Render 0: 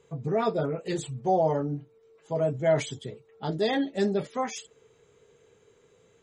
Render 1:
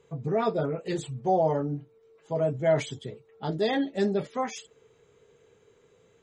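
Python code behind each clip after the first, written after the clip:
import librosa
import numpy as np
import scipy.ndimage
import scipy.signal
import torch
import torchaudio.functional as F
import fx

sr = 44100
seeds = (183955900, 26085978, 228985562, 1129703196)

y = fx.high_shelf(x, sr, hz=7500.0, db=-7.0)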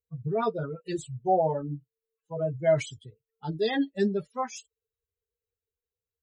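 y = fx.bin_expand(x, sr, power=2.0)
y = F.gain(torch.from_numpy(y), 2.5).numpy()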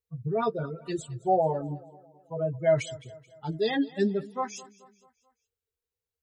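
y = fx.echo_feedback(x, sr, ms=217, feedback_pct=48, wet_db=-20)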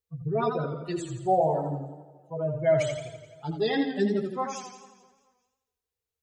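y = fx.echo_warbled(x, sr, ms=84, feedback_pct=55, rate_hz=2.8, cents=80, wet_db=-6.5)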